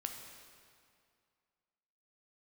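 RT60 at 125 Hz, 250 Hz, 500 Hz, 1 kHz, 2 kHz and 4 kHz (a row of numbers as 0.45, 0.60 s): 2.3, 2.3, 2.2, 2.3, 2.0, 1.9 s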